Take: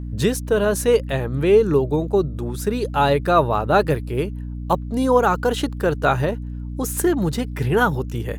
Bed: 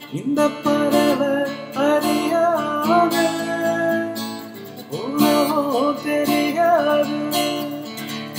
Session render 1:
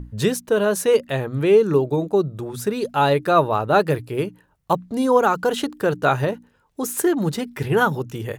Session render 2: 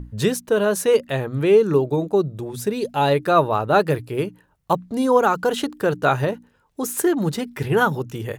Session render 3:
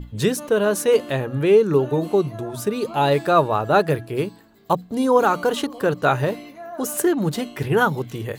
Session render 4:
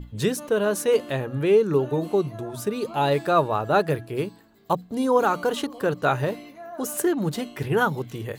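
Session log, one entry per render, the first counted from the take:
hum notches 60/120/180/240/300 Hz
2.22–3.08 s: peaking EQ 1.3 kHz -8 dB 0.52 oct
add bed -20 dB
trim -3.5 dB

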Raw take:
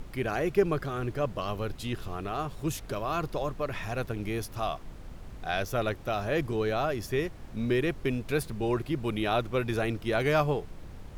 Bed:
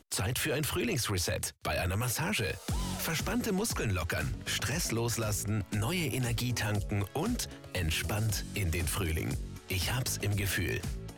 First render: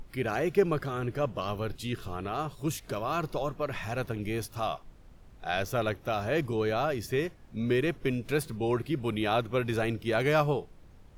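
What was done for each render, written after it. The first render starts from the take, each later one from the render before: noise print and reduce 10 dB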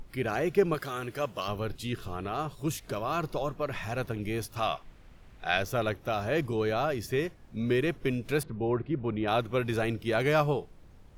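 0.74–1.48 s: tilt EQ +2.5 dB/octave; 4.56–5.58 s: peaking EQ 2.3 kHz +7 dB 1.7 oct; 8.43–9.28 s: Bessel low-pass 1.4 kHz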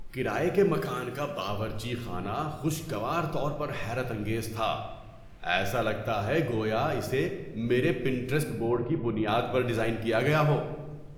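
simulated room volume 710 m³, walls mixed, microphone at 0.83 m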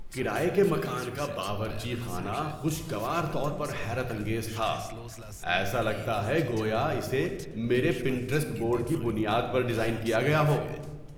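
add bed -12 dB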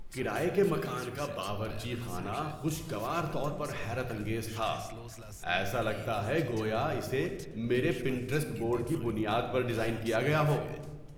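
trim -3.5 dB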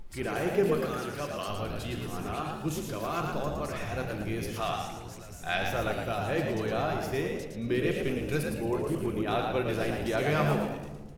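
frequency-shifting echo 112 ms, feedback 32%, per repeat +62 Hz, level -5 dB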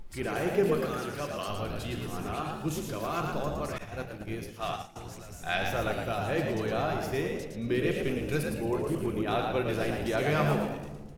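3.78–4.96 s: expander -29 dBFS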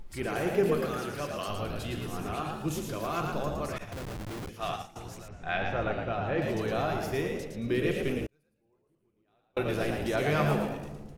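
3.92–4.49 s: Schmitt trigger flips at -40 dBFS; 5.28–6.42 s: low-pass 2.6 kHz; 8.26–9.57 s: inverted gate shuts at -28 dBFS, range -42 dB

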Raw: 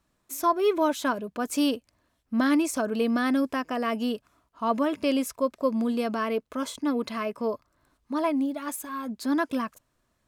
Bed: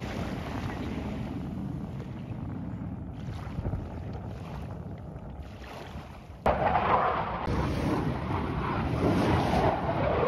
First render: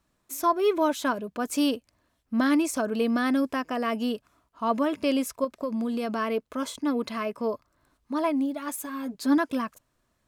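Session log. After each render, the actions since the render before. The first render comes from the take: 5.44–6.15 s: compression, threshold -25 dBFS; 8.77–9.38 s: comb 7 ms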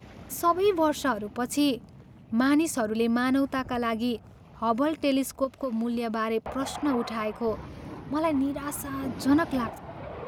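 add bed -12 dB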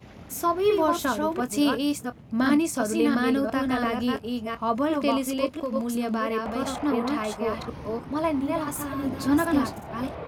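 chunks repeated in reverse 350 ms, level -3 dB; doubling 24 ms -12.5 dB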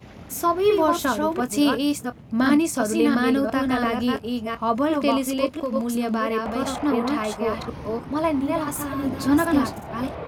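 trim +3 dB

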